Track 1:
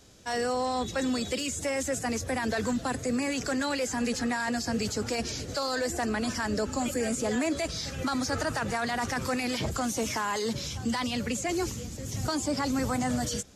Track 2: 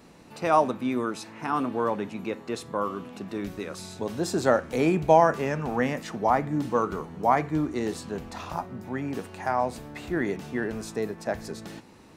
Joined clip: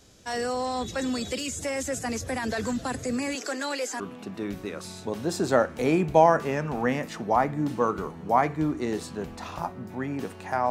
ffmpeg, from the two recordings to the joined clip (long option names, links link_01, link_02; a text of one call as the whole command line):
ffmpeg -i cue0.wav -i cue1.wav -filter_complex "[0:a]asettb=1/sr,asplit=3[link_01][link_02][link_03];[link_01]atrim=end=3.354[link_04];[link_02]atrim=start=3.35:end=4,asetpts=PTS-STARTPTS,afade=type=in:duration=0.004:curve=qsin,afade=type=out:start_time=0.646:duration=0.004:curve=qsin,highpass=frequency=300:width=0.5412,highpass=frequency=300:width=1.3066[link_05];[link_03]atrim=start=3.996[link_06];[link_04][link_05]acrossfade=duration=0.004:curve1=hsin:curve2=qsin[link_07];[link_07][link_06]acrossfade=duration=0.004:curve1=qsin:curve2=hsin,apad=whole_dur=10.7,atrim=end=10.7,atrim=end=4.002[link_08];[1:a]atrim=start=2.938:end=9.64[link_09];[link_08][link_09]acrossfade=duration=0.004:curve1=hsin:curve2=hsin" out.wav